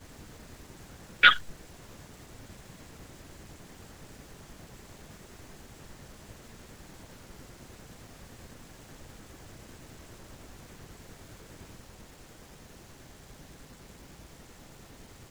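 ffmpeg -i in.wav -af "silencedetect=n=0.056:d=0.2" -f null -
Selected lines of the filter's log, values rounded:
silence_start: 0.00
silence_end: 1.23 | silence_duration: 1.23
silence_start: 1.36
silence_end: 15.31 | silence_duration: 13.95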